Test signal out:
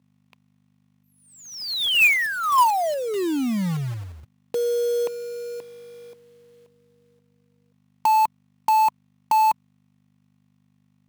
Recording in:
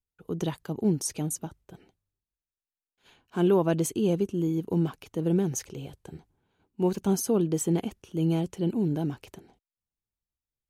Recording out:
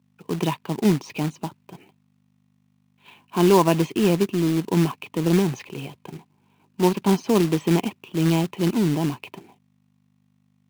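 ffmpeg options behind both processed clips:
-af "aeval=exprs='val(0)+0.000891*(sin(2*PI*50*n/s)+sin(2*PI*2*50*n/s)/2+sin(2*PI*3*50*n/s)/3+sin(2*PI*4*50*n/s)/4+sin(2*PI*5*50*n/s)/5)':c=same,highpass=f=130:w=0.5412,highpass=f=130:w=1.3066,equalizer=f=500:t=q:w=4:g=-4,equalizer=f=1k:t=q:w=4:g=10,equalizer=f=1.5k:t=q:w=4:g=-7,equalizer=f=2.5k:t=q:w=4:g=10,lowpass=f=3.9k:w=0.5412,lowpass=f=3.9k:w=1.3066,acrusher=bits=3:mode=log:mix=0:aa=0.000001,volume=6dB"

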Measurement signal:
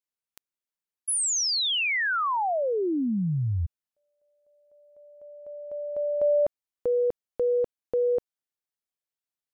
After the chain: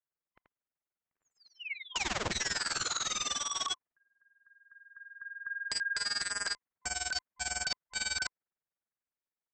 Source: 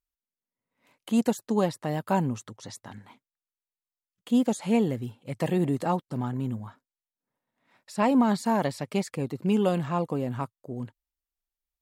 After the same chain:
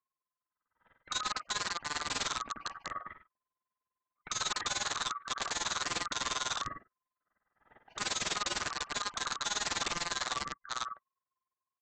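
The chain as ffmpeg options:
-af "afftfilt=real='real(if(lt(b,960),b+48*(1-2*mod(floor(b/48),2)),b),0)':imag='imag(if(lt(b,960),b+48*(1-2*mod(floor(b/48),2)),b),0)':win_size=2048:overlap=0.75,aecho=1:1:83:0.376,acompressor=threshold=-32dB:ratio=4:attack=0.12:release=75:knee=6:detection=peak,lowpass=f=2k:w=0.5412,lowpass=f=2k:w=1.3066,dynaudnorm=f=150:g=21:m=5dB,aresample=16000,aeval=exprs='(mod(29.9*val(0)+1,2)-1)/29.9':c=same,aresample=44100,tremolo=f=20:d=0.889,volume=3dB"

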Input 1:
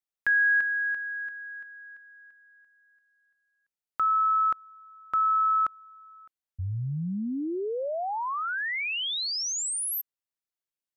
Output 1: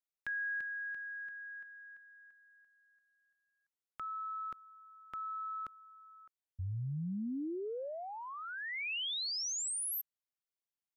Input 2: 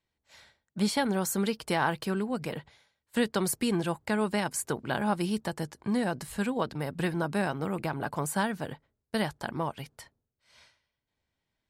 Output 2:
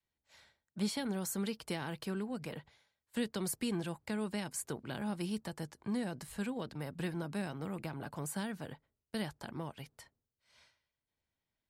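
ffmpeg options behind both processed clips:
-filter_complex "[0:a]adynamicequalizer=threshold=0.00794:dfrequency=390:dqfactor=2.9:tfrequency=390:tqfactor=2.9:attack=5:release=100:ratio=0.375:range=1.5:mode=cutabove:tftype=bell,acrossover=split=480|2200[a][b][c];[b]acompressor=threshold=-39dB:ratio=6:attack=3:release=21:knee=1:detection=rms[d];[a][d][c]amix=inputs=3:normalize=0,volume=-7dB"

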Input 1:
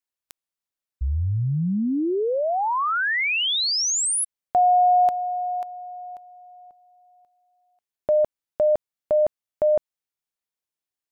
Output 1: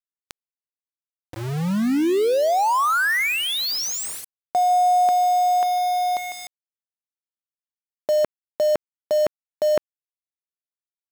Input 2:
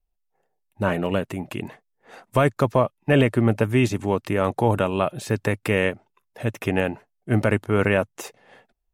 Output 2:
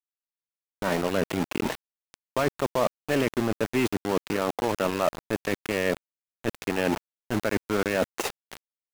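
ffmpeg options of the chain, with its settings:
-filter_complex "[0:a]areverse,acompressor=threshold=-34dB:ratio=6:attack=2:release=441:knee=6:detection=peak,areverse,adynamicequalizer=threshold=0.00224:dfrequency=3000:dqfactor=1.8:tfrequency=3000:tqfactor=1.8:attack=5:release=100:ratio=0.4:range=1.5:mode=cutabove:tftype=bell,dynaudnorm=f=210:g=3:m=9dB,highpass=190,aemphasis=mode=reproduction:type=50kf,asplit=2[a][b];[b]aecho=0:1:151|302|453:0.1|0.035|0.0123[c];[a][c]amix=inputs=2:normalize=0,aeval=exprs='val(0)*gte(abs(val(0)),0.0224)':c=same,volume=7dB"

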